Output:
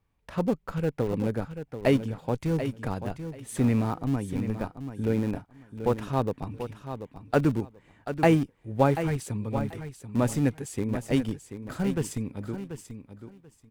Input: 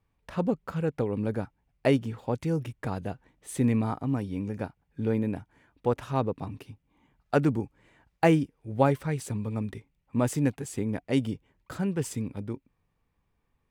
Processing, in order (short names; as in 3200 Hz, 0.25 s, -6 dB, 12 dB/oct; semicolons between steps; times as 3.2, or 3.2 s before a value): in parallel at -8.5 dB: Schmitt trigger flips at -24 dBFS; on the sum: feedback echo 0.736 s, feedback 18%, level -10 dB